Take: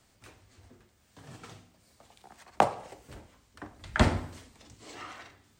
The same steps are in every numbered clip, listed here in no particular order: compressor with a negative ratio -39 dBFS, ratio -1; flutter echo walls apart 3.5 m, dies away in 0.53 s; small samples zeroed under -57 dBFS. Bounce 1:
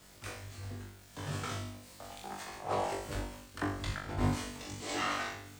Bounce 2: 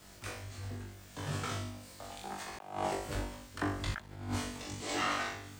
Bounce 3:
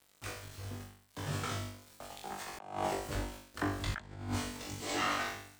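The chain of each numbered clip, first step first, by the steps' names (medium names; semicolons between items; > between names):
compressor with a negative ratio > small samples zeroed > flutter echo; flutter echo > compressor with a negative ratio > small samples zeroed; small samples zeroed > flutter echo > compressor with a negative ratio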